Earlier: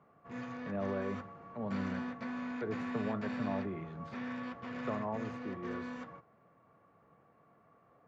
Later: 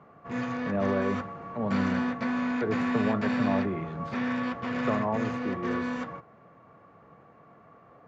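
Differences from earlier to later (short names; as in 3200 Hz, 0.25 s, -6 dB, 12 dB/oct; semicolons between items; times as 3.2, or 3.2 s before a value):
speech +8.5 dB; background +11.0 dB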